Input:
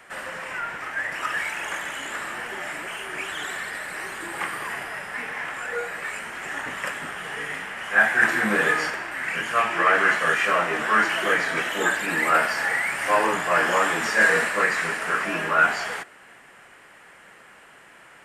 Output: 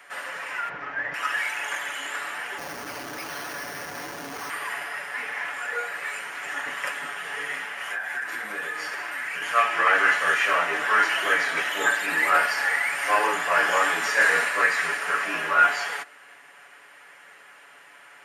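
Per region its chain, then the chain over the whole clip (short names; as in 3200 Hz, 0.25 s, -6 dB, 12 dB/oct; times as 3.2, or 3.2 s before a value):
0.69–1.14 LPF 6100 Hz 24 dB/oct + tilt -4 dB/oct
2.58–4.5 frequency shift -63 Hz + Schmitt trigger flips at -31 dBFS + careless resampling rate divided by 6×, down filtered, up hold
7.8–9.42 high shelf 12000 Hz +7.5 dB + compressor 12:1, threshold -27 dBFS
whole clip: HPF 690 Hz 6 dB/oct; notch 7900 Hz, Q 7.4; comb 7 ms, depth 50%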